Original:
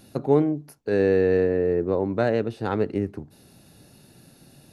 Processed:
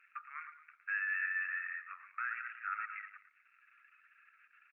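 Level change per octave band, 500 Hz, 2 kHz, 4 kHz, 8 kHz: under -40 dB, +1.0 dB, under -25 dB, n/a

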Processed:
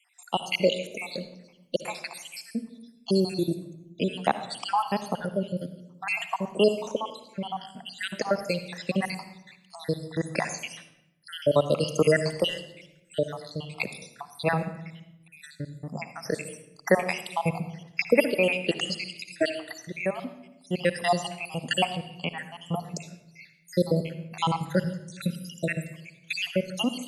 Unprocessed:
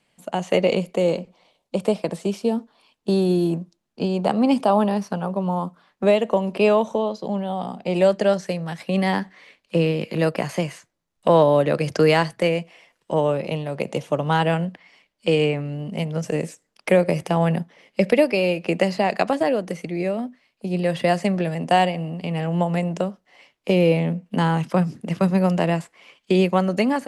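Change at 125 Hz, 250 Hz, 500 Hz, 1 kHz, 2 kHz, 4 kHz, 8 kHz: -9.0, -9.0, -8.0, -7.0, -2.5, -0.5, +1.5 dB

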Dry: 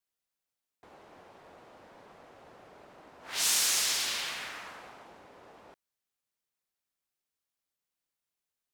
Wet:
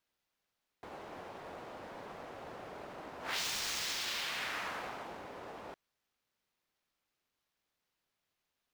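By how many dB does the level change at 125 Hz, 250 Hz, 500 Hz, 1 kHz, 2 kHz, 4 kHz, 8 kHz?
+4.5, +4.0, +4.0, +2.0, -2.0, -6.0, -12.5 dB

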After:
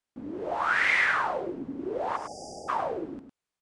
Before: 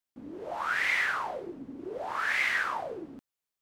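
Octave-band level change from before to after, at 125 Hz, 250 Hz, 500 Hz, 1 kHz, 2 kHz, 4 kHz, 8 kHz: +6.0, +6.0, +6.0, +4.5, +1.5, -0.5, 0.0 dB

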